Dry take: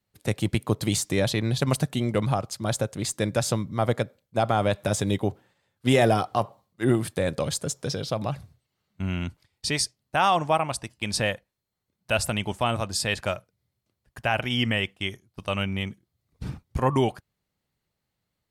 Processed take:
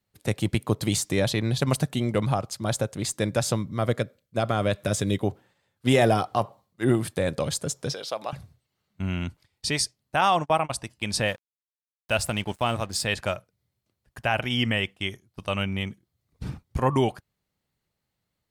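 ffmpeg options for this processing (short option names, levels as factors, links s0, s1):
-filter_complex "[0:a]asettb=1/sr,asplit=3[s0][s1][s2];[s0]atrim=end=3.764[s3];[s1]atrim=start=3.76:end=5.23,asetpts=PTS-STARTPTS,afade=t=in:d=0.004:c=qsin,afade=t=out:st=1.466:d=0.004:c=qsin,equalizer=f=840:t=o:w=0.36:g=-10[s4];[s2]atrim=start=5.226[s5];[s3][s4]acrossfade=d=0.004:c1=hsin:c2=qsin[s6];[s6][s5]acrossfade=d=0.004:c1=qsin:c2=hsin,asettb=1/sr,asplit=3[s7][s8][s9];[s7]atrim=end=7.934[s10];[s8]atrim=start=7.93:end=8.33,asetpts=PTS-STARTPTS,afade=t=in:d=0.004:c=qsin,afade=t=out:st=0.396:d=0.004:c=qsin,highpass=520[s11];[s9]atrim=start=8.326[s12];[s10][s11]acrossfade=d=0.004:c1=hsin:c2=qsin[s13];[s13][s12]acrossfade=d=0.004:c1=qsin:c2=hsin,asettb=1/sr,asplit=3[s14][s15][s16];[s14]atrim=end=10.214[s17];[s15]atrim=start=10.21:end=10.71,asetpts=PTS-STARTPTS,afade=t=in:d=0.004:c=qsin,afade=t=out:st=0.496:d=0.004:c=qsin,agate=range=0.02:threshold=0.0316:ratio=16:release=100:detection=peak[s18];[s16]atrim=start=10.706[s19];[s17][s18]acrossfade=d=0.004:c1=hsin:c2=qsin[s20];[s20][s19]acrossfade=d=0.004:c1=qsin:c2=hsin,asettb=1/sr,asplit=3[s21][s22][s23];[s21]atrim=end=11.284[s24];[s22]atrim=start=11.28:end=13.04,asetpts=PTS-STARTPTS,afade=t=in:d=0.004:c=qsin,afade=t=out:st=1.756:d=0.004:c=qsin,aeval=exprs='sgn(val(0))*max(abs(val(0))-0.00531,0)':c=same[s25];[s23]atrim=start=13.036[s26];[s24][s25]acrossfade=d=0.004:c1=hsin:c2=qsin[s27];[s27][s26]acrossfade=d=0.004:c1=qsin:c2=hsin"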